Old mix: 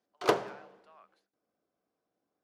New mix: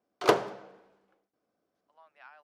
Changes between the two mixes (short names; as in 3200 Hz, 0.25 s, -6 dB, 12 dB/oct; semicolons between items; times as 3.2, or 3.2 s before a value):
speech: entry +1.75 s; background +3.5 dB